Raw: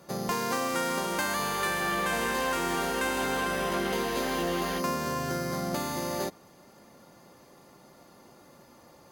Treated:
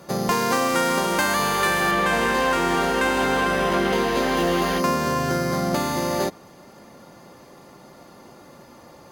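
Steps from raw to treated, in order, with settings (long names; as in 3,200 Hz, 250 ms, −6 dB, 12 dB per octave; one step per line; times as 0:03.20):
high-shelf EQ 6,400 Hz −3 dB, from 0:01.91 −10.5 dB, from 0:04.37 −5.5 dB
level +8.5 dB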